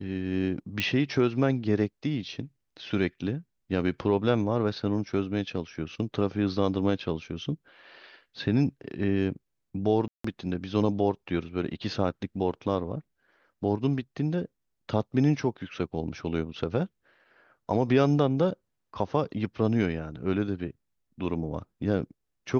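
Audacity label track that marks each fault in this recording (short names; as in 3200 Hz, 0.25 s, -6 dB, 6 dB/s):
0.800000	0.800000	pop -13 dBFS
10.080000	10.240000	gap 0.164 s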